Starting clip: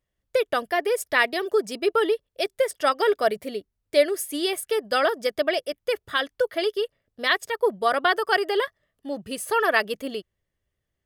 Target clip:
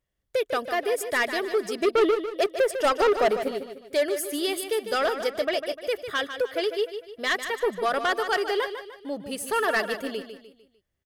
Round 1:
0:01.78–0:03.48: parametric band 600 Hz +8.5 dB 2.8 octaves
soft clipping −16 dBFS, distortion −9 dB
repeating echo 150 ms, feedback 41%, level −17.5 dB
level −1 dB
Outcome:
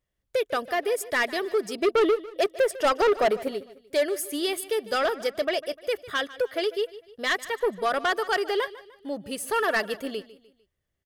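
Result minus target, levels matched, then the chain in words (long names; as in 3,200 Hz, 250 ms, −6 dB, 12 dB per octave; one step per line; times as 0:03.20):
echo-to-direct −8 dB
0:01.78–0:03.48: parametric band 600 Hz +8.5 dB 2.8 octaves
soft clipping −16 dBFS, distortion −9 dB
repeating echo 150 ms, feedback 41%, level −9.5 dB
level −1 dB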